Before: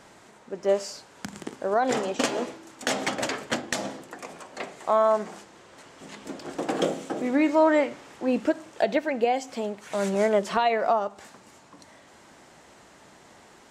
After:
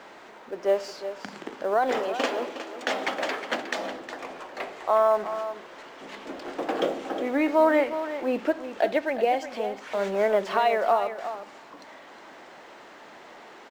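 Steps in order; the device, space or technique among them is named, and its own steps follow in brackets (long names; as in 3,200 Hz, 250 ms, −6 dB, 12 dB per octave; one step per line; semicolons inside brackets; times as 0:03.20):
phone line with mismatched companding (band-pass filter 320–3,600 Hz; mu-law and A-law mismatch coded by mu)
0:01.99–0:03.89: high-pass filter 160 Hz 6 dB per octave
single-tap delay 362 ms −11 dB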